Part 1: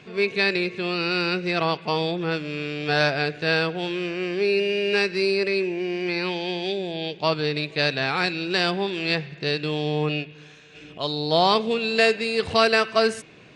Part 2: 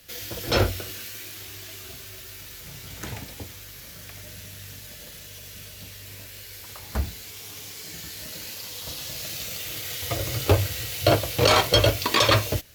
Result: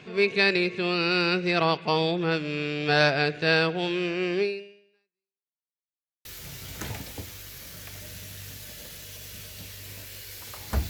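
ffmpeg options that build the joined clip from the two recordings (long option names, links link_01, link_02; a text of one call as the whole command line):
ffmpeg -i cue0.wav -i cue1.wav -filter_complex "[0:a]apad=whole_dur=10.89,atrim=end=10.89,asplit=2[link_01][link_02];[link_01]atrim=end=5.55,asetpts=PTS-STARTPTS,afade=type=out:start_time=4.4:duration=1.15:curve=exp[link_03];[link_02]atrim=start=5.55:end=6.25,asetpts=PTS-STARTPTS,volume=0[link_04];[1:a]atrim=start=2.47:end=7.11,asetpts=PTS-STARTPTS,afade=type=in:duration=0.004:curve=hsin[link_05];[link_03][link_04][link_05]concat=n=3:v=0:a=1" out.wav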